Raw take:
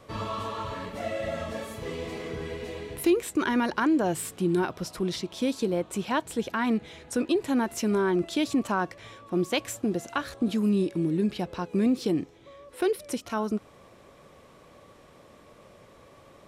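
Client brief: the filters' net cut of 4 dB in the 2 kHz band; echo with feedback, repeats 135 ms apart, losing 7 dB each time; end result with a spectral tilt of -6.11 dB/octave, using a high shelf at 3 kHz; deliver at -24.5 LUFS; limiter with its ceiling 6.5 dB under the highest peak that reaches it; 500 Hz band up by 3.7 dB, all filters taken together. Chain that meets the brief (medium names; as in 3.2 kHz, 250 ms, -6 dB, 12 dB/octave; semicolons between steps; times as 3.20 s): peaking EQ 500 Hz +5.5 dB; peaking EQ 2 kHz -4 dB; treble shelf 3 kHz -6 dB; peak limiter -18.5 dBFS; feedback delay 135 ms, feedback 45%, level -7 dB; trim +4 dB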